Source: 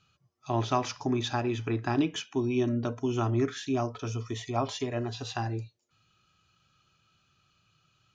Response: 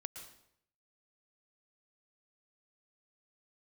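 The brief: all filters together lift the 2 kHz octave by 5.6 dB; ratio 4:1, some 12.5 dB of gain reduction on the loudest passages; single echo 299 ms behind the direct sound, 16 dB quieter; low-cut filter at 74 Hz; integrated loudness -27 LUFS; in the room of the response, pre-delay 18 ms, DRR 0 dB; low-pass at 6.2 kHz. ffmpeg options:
-filter_complex "[0:a]highpass=74,lowpass=6200,equalizer=f=2000:t=o:g=7.5,acompressor=threshold=0.0141:ratio=4,aecho=1:1:299:0.158,asplit=2[s0][s1];[1:a]atrim=start_sample=2205,adelay=18[s2];[s1][s2]afir=irnorm=-1:irlink=0,volume=1.41[s3];[s0][s3]amix=inputs=2:normalize=0,volume=2.99"

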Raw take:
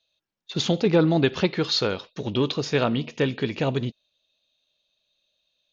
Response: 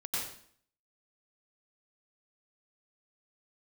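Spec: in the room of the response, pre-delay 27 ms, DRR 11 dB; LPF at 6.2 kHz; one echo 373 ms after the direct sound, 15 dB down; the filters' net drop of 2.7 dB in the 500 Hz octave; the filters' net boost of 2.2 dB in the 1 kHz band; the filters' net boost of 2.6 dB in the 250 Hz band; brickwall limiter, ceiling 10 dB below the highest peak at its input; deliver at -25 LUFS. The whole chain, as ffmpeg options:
-filter_complex "[0:a]lowpass=6200,equalizer=f=250:t=o:g=5.5,equalizer=f=500:t=o:g=-6.5,equalizer=f=1000:t=o:g=5,alimiter=limit=0.15:level=0:latency=1,aecho=1:1:373:0.178,asplit=2[s0][s1];[1:a]atrim=start_sample=2205,adelay=27[s2];[s1][s2]afir=irnorm=-1:irlink=0,volume=0.178[s3];[s0][s3]amix=inputs=2:normalize=0,volume=1.33"

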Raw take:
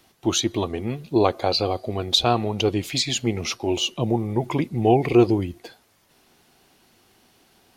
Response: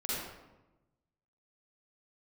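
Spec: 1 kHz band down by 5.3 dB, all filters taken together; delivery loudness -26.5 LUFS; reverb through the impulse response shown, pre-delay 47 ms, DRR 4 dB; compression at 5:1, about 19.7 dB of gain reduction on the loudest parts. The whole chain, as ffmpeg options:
-filter_complex "[0:a]equalizer=f=1000:t=o:g=-8.5,acompressor=threshold=0.0178:ratio=5,asplit=2[s0][s1];[1:a]atrim=start_sample=2205,adelay=47[s2];[s1][s2]afir=irnorm=-1:irlink=0,volume=0.355[s3];[s0][s3]amix=inputs=2:normalize=0,volume=2.99"

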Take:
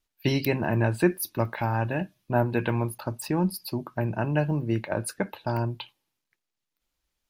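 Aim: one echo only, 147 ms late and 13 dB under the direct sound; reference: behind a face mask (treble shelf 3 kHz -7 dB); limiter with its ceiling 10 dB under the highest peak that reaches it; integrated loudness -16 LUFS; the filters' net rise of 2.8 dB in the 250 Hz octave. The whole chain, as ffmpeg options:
-af "equalizer=f=250:t=o:g=4,alimiter=limit=0.141:level=0:latency=1,highshelf=f=3000:g=-7,aecho=1:1:147:0.224,volume=4.73"

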